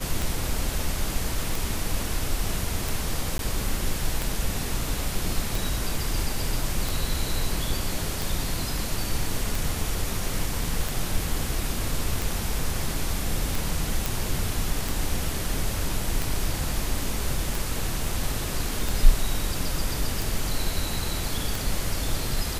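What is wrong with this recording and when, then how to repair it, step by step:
tick 45 rpm
3.38–3.39 gap 12 ms
14.06 pop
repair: de-click; interpolate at 3.38, 12 ms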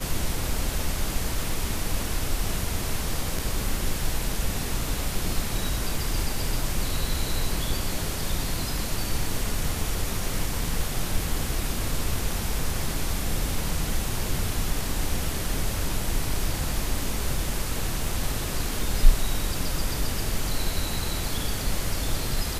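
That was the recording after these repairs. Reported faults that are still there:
none

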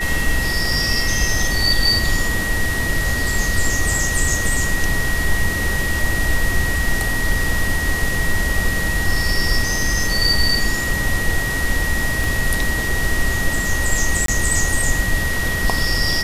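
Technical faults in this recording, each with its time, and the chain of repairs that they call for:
tone 1900 Hz -22 dBFS
12.24 pop
14.26–14.28 gap 23 ms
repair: de-click; notch 1900 Hz, Q 30; interpolate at 14.26, 23 ms

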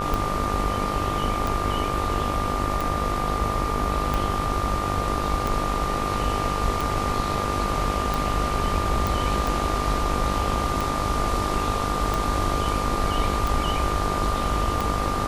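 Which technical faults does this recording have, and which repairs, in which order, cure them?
buzz 50 Hz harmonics 28 -30 dBFS
tick 45 rpm
tone 1200 Hz -28 dBFS
9.07 pop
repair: de-click; de-hum 50 Hz, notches 28; notch 1200 Hz, Q 30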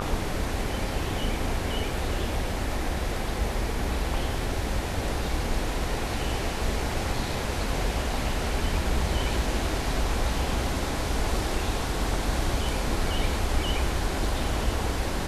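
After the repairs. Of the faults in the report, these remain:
none

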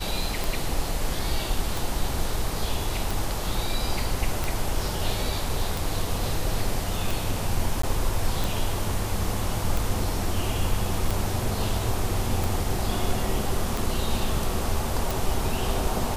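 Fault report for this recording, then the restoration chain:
tick 45 rpm
7.82–7.83 gap 14 ms
15.11 pop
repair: de-click; interpolate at 7.82, 14 ms

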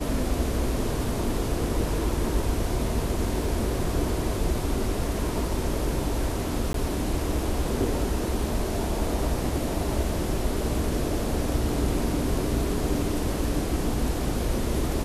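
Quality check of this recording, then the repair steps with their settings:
3.44 gap 2.2 ms
6.73–6.74 gap 13 ms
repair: interpolate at 3.44, 2.2 ms; interpolate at 6.73, 13 ms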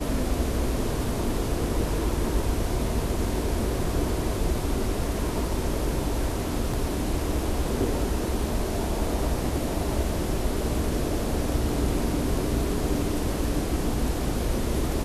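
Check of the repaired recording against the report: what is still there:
none

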